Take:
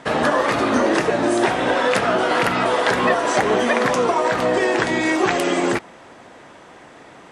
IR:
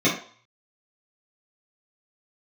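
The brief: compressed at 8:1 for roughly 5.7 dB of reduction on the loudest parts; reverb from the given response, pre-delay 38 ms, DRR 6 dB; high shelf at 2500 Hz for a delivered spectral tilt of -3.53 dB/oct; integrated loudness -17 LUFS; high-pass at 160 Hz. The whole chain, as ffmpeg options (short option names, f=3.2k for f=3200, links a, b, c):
-filter_complex "[0:a]highpass=160,highshelf=f=2.5k:g=-6,acompressor=threshold=-20dB:ratio=8,asplit=2[a][b];[1:a]atrim=start_sample=2205,adelay=38[c];[b][c]afir=irnorm=-1:irlink=0,volume=-23dB[d];[a][d]amix=inputs=2:normalize=0,volume=5.5dB"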